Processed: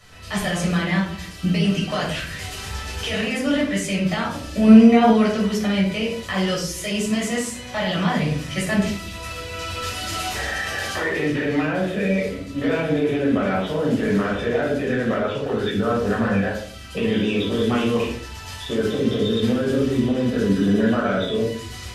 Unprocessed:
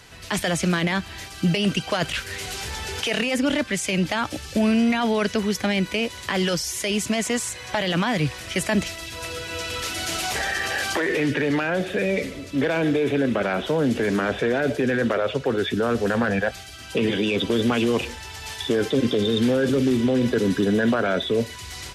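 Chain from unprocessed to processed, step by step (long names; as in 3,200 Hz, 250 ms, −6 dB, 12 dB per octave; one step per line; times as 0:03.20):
0:04.67–0:05.10: parametric band 400 Hz +9.5 dB 2.9 octaves
rectangular room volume 580 cubic metres, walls furnished, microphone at 6.3 metres
level −9 dB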